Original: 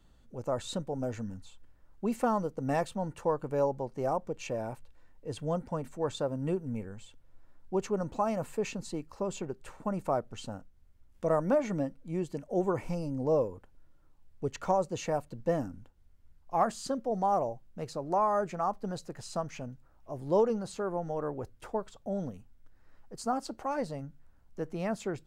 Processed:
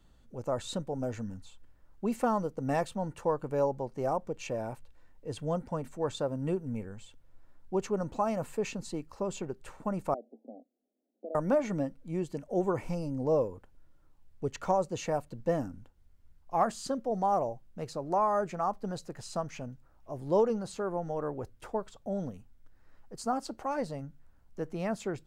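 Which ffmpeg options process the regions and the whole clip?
-filter_complex "[0:a]asettb=1/sr,asplit=3[a][b][c];[a]atrim=end=10.144[d];[b]atrim=start=10.14:end=11.35,asetpts=PTS-STARTPTS,afade=t=in:d=0.004:c=qsin,afade=t=out:st=1.206:d=0.004:c=qsin,acompressor=threshold=-38dB:ratio=4:attack=3.2:release=140:knee=1:detection=peak,asuperpass=centerf=410:order=20:qfactor=0.75[e];[c]atrim=start=11.346[f];[d][e]acrossfade=d=0.004:c1=hsin:c2=qsin[g];[g][f]acrossfade=d=0.004:c1=qsin:c2=hsin"

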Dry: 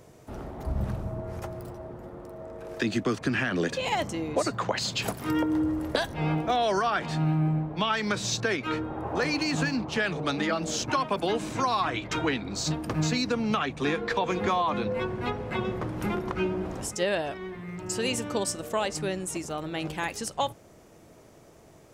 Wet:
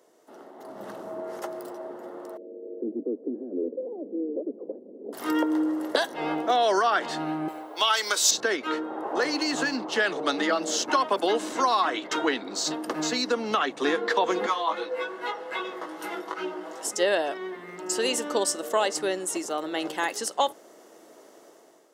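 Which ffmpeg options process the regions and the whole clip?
-filter_complex "[0:a]asettb=1/sr,asplit=3[a][b][c];[a]atrim=end=2.374[d];[b]atrim=start=2.37:end=5.13,asetpts=PTS-STARTPTS,afade=t=in:d=0.004:c=qsin,afade=t=out:st=2.756:d=0.004:c=qsin,asoftclip=type=hard:threshold=-26dB,asuperpass=centerf=330:order=8:qfactor=1.1[e];[c]atrim=start=5.126[f];[d][e]acrossfade=d=0.004:c1=hsin:c2=qsin[g];[g][f]acrossfade=d=0.004:c1=qsin:c2=hsin,asettb=1/sr,asplit=3[h][i][j];[h]atrim=end=7.484[k];[i]atrim=start=7.48:end=8.31,asetpts=PTS-STARTPTS,afade=t=in:d=0.004:c=qsin,afade=t=out:st=0.826:d=0.004:c=qsin,highpass=300,aemphasis=mode=production:type=riaa,bandreject=f=1.8k:w=12[l];[j]atrim=start=8.306[m];[k][l]acrossfade=d=0.004:c1=hsin:c2=qsin[n];[n][m]acrossfade=d=0.004:c1=qsin:c2=hsin,asettb=1/sr,asplit=3[o][p][q];[o]atrim=end=14.464[r];[p]atrim=start=14.46:end=16.85,asetpts=PTS-STARTPTS,afade=t=in:d=0.004:c=qsin,afade=t=out:st=2.386:d=0.004:c=qsin,highpass=f=700:p=1,aecho=1:1:6.2:0.68,atrim=end_sample=105399,flanger=delay=16.5:depth=3.7:speed=2.5[s];[q]atrim=start=16.846[t];[r][s]acrossfade=d=0.004:c1=hsin:c2=qsin[u];[u][t]acrossfade=d=0.004:c1=qsin:c2=hsin,highpass=f=290:w=0.5412,highpass=f=290:w=1.3066,bandreject=f=2.4k:w=5.9,dynaudnorm=f=550:g=3:m=11dB,volume=-6.5dB"

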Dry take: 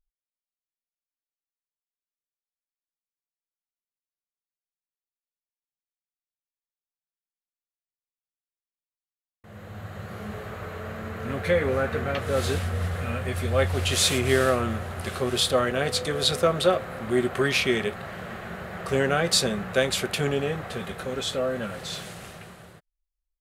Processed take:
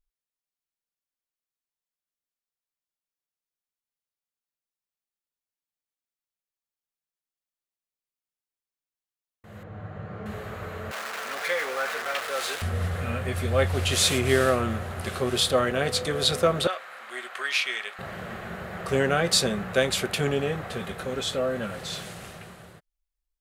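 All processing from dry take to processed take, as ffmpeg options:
-filter_complex "[0:a]asettb=1/sr,asplit=3[a][b][c];[a]atrim=end=9.634[d];[b]atrim=start=9.63:end=10.26,asetpts=PTS-STARTPTS,afade=t=in:d=0.004:c=qsin,afade=t=out:st=0.626:d=0.004:c=qsin,lowpass=f=1.5k:p=1,aemphasis=mode=reproduction:type=50fm,aecho=1:1:6.6:0.34,atrim=end_sample=27783[e];[c]atrim=start=10.256[f];[d][e]acrossfade=d=0.004:c1=hsin:c2=qsin[g];[g][f]acrossfade=d=0.004:c1=qsin:c2=hsin,asettb=1/sr,asplit=3[h][i][j];[h]atrim=end=10.914[k];[i]atrim=start=10.91:end=12.62,asetpts=PTS-STARTPTS,afade=t=in:d=0.004:c=qsin,afade=t=out:st=1.706:d=0.004:c=qsin,aeval=exprs='val(0)+0.5*0.0473*sgn(val(0))':c=same,highpass=840,highshelf=f=8.7k:g=-4.5[l];[j]atrim=start=12.616[m];[k][l]acrossfade=d=0.004:c1=hsin:c2=qsin[n];[n][m]acrossfade=d=0.004:c1=qsin:c2=hsin,asettb=1/sr,asplit=3[o][p][q];[o]atrim=end=16.674[r];[p]atrim=start=16.67:end=17.99,asetpts=PTS-STARTPTS,afade=t=in:d=0.004:c=qsin,afade=t=out:st=1.316:d=0.004:c=qsin,highpass=1.2k,highshelf=f=8.9k:g=-9[s];[q]atrim=start=17.986[t];[r][s]acrossfade=d=0.004:c1=hsin:c2=qsin[u];[u][t]acrossfade=d=0.004:c1=qsin:c2=hsin"

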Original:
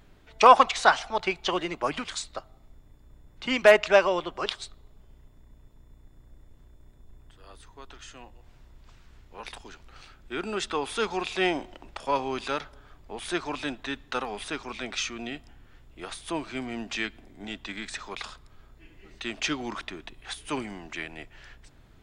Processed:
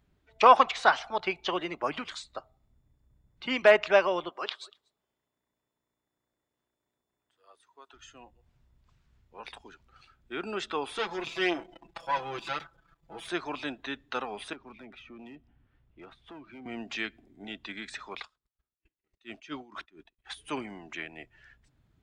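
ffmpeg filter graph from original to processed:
-filter_complex "[0:a]asettb=1/sr,asplit=3[a][b][c];[a]atrim=end=4.294[d];[b]atrim=start=4.29:end=7.94,asetpts=PTS-STARTPTS,afade=t=in:d=0.004:c=qsin,afade=t=out:st=3.646:d=0.004:c=qsin,highpass=f=520:p=1,aecho=1:1:239:0.0841,atrim=end_sample=160965[e];[c]atrim=start=7.936[f];[d][e]acrossfade=d=0.004:c1=hsin:c2=qsin[g];[g][f]acrossfade=d=0.004:c1=qsin:c2=hsin,asettb=1/sr,asplit=3[h][i][j];[h]atrim=end=10.984[k];[i]atrim=start=10.98:end=13.28,asetpts=PTS-STARTPTS,afade=t=in:d=0.004:c=qsin,afade=t=out:st=2.296:d=0.004:c=qsin,aeval=exprs='if(lt(val(0),0),0.251*val(0),val(0))':c=same,aecho=1:1:6:0.96,atrim=end_sample=101430[l];[j]atrim=start=13.276[m];[k][l]acrossfade=d=0.004:c1=hsin:c2=qsin[n];[n][m]acrossfade=d=0.004:c1=qsin:c2=hsin,asettb=1/sr,asplit=3[o][p][q];[o]atrim=end=14.534[r];[p]atrim=start=14.53:end=16.66,asetpts=PTS-STARTPTS,afade=t=in:d=0.004:c=qsin,afade=t=out:st=2.126:d=0.004:c=qsin,lowpass=3.2k,acrossover=split=340|900[s][t][u];[s]acompressor=threshold=-40dB:ratio=4[v];[t]acompressor=threshold=-51dB:ratio=4[w];[u]acompressor=threshold=-47dB:ratio=4[x];[v][w][x]amix=inputs=3:normalize=0,asoftclip=type=hard:threshold=-39dB[y];[q]atrim=start=16.656[z];[r][y]acrossfade=d=0.004:c1=hsin:c2=qsin[aa];[aa][z]acrossfade=d=0.004:c1=qsin:c2=hsin,asettb=1/sr,asplit=3[ab][ac][ad];[ab]atrim=end=18.204[ae];[ac]atrim=start=18.2:end=20.3,asetpts=PTS-STARTPTS,afade=t=in:d=0.004:c=qsin,afade=t=out:st=2.096:d=0.004:c=qsin,agate=range=-19dB:threshold=-48dB:ratio=16:release=100:detection=peak,aeval=exprs='val(0)*pow(10,-19*(0.5-0.5*cos(2*PI*4.4*n/s))/20)':c=same[af];[ad]atrim=start=20.296[ag];[ae][af]acrossfade=d=0.004:c1=hsin:c2=qsin[ah];[ah][ag]acrossfade=d=0.004:c1=qsin:c2=hsin,afftdn=nr=13:nf=-47,highpass=f=150:p=1,acrossover=split=4500[ai][aj];[aj]acompressor=threshold=-45dB:ratio=4:attack=1:release=60[ak];[ai][ak]amix=inputs=2:normalize=0,volume=-2.5dB"

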